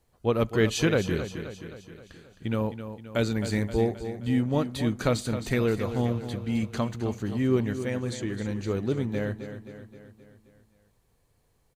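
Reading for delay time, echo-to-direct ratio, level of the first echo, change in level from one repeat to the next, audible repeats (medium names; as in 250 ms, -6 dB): 263 ms, -9.0 dB, -10.5 dB, -5.0 dB, 5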